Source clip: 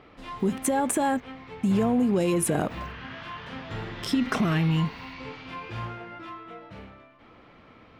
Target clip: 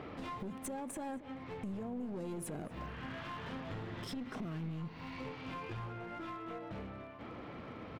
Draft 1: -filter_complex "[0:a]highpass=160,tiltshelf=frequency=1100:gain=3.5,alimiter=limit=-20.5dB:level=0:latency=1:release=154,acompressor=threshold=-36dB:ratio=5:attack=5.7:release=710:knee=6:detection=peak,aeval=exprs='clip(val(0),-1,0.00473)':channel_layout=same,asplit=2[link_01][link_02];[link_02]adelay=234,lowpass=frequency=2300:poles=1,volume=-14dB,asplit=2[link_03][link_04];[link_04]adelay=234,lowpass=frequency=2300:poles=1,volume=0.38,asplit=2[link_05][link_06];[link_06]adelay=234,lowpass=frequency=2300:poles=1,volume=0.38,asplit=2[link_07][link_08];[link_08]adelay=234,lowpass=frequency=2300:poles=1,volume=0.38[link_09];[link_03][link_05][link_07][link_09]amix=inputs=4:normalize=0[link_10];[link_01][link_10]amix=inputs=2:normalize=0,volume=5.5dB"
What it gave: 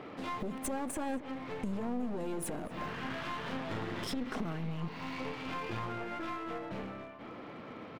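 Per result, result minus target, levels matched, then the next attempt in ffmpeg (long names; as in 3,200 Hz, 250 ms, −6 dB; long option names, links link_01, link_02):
downward compressor: peak gain reduction −7 dB; 125 Hz band −3.0 dB
-filter_complex "[0:a]highpass=160,tiltshelf=frequency=1100:gain=3.5,alimiter=limit=-20.5dB:level=0:latency=1:release=154,acompressor=threshold=-44.5dB:ratio=5:attack=5.7:release=710:knee=6:detection=peak,aeval=exprs='clip(val(0),-1,0.00473)':channel_layout=same,asplit=2[link_01][link_02];[link_02]adelay=234,lowpass=frequency=2300:poles=1,volume=-14dB,asplit=2[link_03][link_04];[link_04]adelay=234,lowpass=frequency=2300:poles=1,volume=0.38,asplit=2[link_05][link_06];[link_06]adelay=234,lowpass=frequency=2300:poles=1,volume=0.38,asplit=2[link_07][link_08];[link_08]adelay=234,lowpass=frequency=2300:poles=1,volume=0.38[link_09];[link_03][link_05][link_07][link_09]amix=inputs=4:normalize=0[link_10];[link_01][link_10]amix=inputs=2:normalize=0,volume=5.5dB"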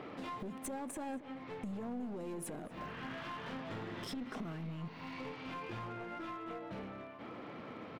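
125 Hz band −3.0 dB
-filter_complex "[0:a]highpass=57,tiltshelf=frequency=1100:gain=3.5,alimiter=limit=-20.5dB:level=0:latency=1:release=154,acompressor=threshold=-44.5dB:ratio=5:attack=5.7:release=710:knee=6:detection=peak,aeval=exprs='clip(val(0),-1,0.00473)':channel_layout=same,asplit=2[link_01][link_02];[link_02]adelay=234,lowpass=frequency=2300:poles=1,volume=-14dB,asplit=2[link_03][link_04];[link_04]adelay=234,lowpass=frequency=2300:poles=1,volume=0.38,asplit=2[link_05][link_06];[link_06]adelay=234,lowpass=frequency=2300:poles=1,volume=0.38,asplit=2[link_07][link_08];[link_08]adelay=234,lowpass=frequency=2300:poles=1,volume=0.38[link_09];[link_03][link_05][link_07][link_09]amix=inputs=4:normalize=0[link_10];[link_01][link_10]amix=inputs=2:normalize=0,volume=5.5dB"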